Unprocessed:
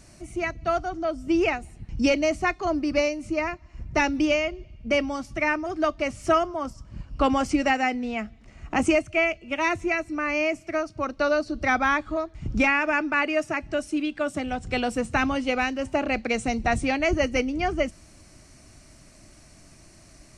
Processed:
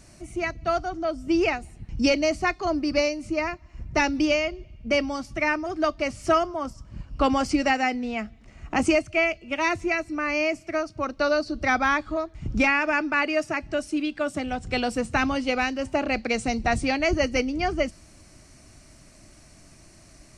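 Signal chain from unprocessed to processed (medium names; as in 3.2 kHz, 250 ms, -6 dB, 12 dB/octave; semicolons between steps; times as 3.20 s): dynamic bell 4.7 kHz, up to +8 dB, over -54 dBFS, Q 3.9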